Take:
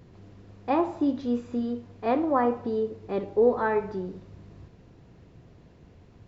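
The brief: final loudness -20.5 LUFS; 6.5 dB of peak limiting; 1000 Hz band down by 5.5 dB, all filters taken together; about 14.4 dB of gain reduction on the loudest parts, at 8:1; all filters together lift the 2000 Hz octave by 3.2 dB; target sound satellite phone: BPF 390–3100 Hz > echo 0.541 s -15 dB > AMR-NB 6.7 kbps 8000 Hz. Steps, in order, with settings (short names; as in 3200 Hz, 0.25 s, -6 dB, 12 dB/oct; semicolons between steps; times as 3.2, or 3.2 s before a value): bell 1000 Hz -9 dB; bell 2000 Hz +8.5 dB; compressor 8:1, threshold -33 dBFS; limiter -30.5 dBFS; BPF 390–3100 Hz; echo 0.541 s -15 dB; gain +24 dB; AMR-NB 6.7 kbps 8000 Hz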